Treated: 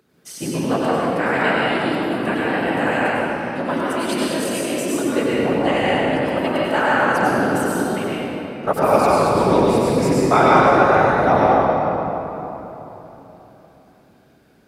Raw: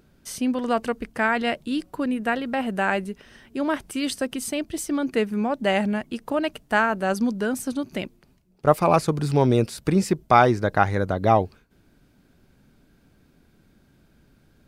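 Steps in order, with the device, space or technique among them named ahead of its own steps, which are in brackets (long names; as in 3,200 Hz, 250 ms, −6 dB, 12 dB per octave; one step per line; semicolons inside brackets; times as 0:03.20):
whispering ghost (random phases in short frames; high-pass filter 260 Hz 6 dB per octave; convolution reverb RT60 3.5 s, pre-delay 87 ms, DRR −7 dB)
level −1 dB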